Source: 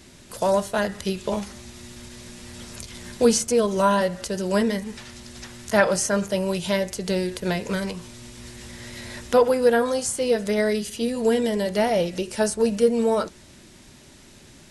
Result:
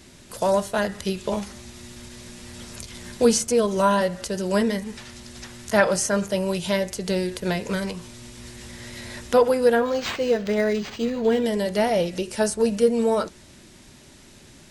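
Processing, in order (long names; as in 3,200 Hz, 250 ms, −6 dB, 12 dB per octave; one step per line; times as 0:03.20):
0:09.75–0:11.46: linearly interpolated sample-rate reduction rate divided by 4×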